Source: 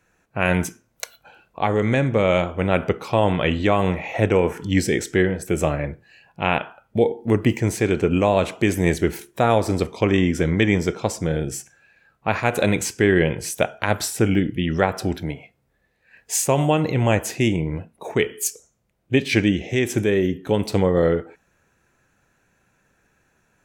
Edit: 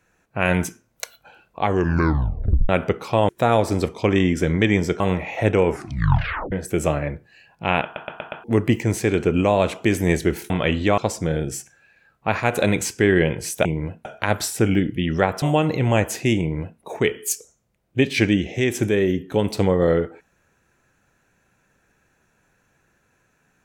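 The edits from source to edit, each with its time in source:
1.65 tape stop 1.04 s
3.29–3.77 swap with 9.27–10.98
4.44 tape stop 0.85 s
6.61 stutter in place 0.12 s, 5 plays
15.02–16.57 cut
17.55–17.95 copy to 13.65

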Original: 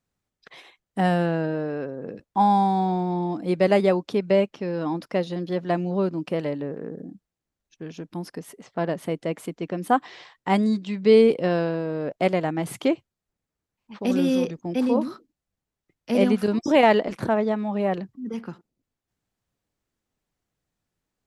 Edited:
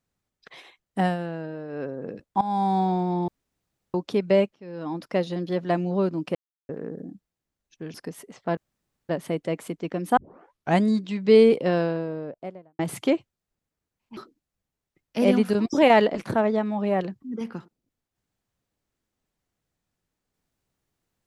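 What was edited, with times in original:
1–1.85 dip -8.5 dB, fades 0.17 s
2.41–2.75 fade in, from -17 dB
3.28–3.94 room tone
4.54–5.16 fade in, from -23.5 dB
6.35–6.69 mute
7.94–8.24 cut
8.87 insert room tone 0.52 s
9.95 tape start 0.64 s
11.5–12.57 studio fade out
13.95–15.1 cut

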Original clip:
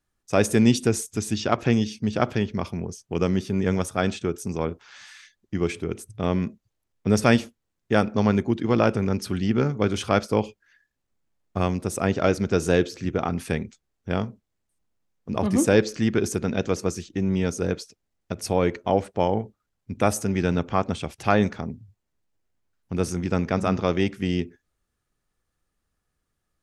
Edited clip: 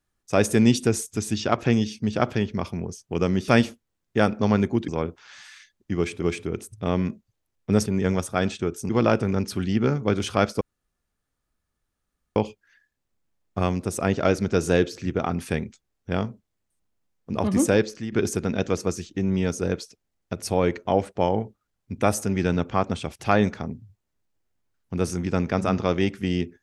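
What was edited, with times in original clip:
3.48–4.51 swap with 7.23–8.63
5.59–5.85 loop, 2 plays
10.35 insert room tone 1.75 s
15.64–16.11 fade out, to -12.5 dB

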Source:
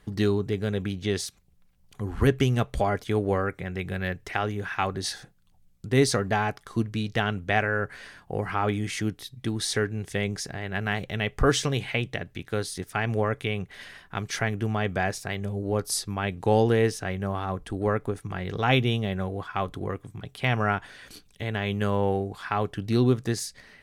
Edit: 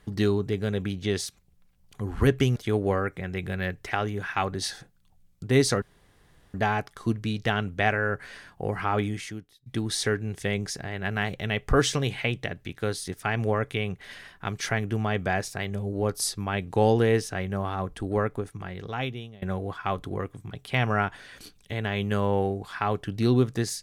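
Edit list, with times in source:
2.56–2.98 cut
6.24 insert room tone 0.72 s
8.76–9.36 fade out quadratic, to -21.5 dB
17.83–19.12 fade out linear, to -24 dB

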